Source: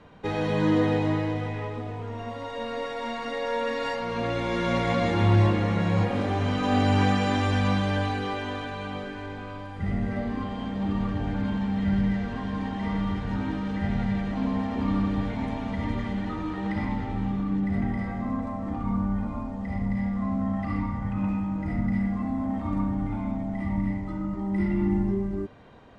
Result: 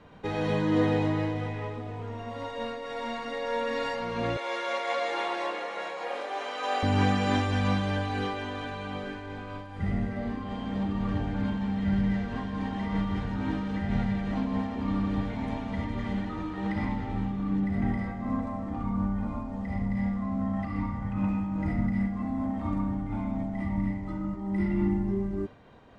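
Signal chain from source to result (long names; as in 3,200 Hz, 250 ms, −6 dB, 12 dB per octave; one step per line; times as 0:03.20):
0:04.37–0:06.83: high-pass filter 470 Hz 24 dB per octave
amplitude modulation by smooth noise, depth 65%
level +1.5 dB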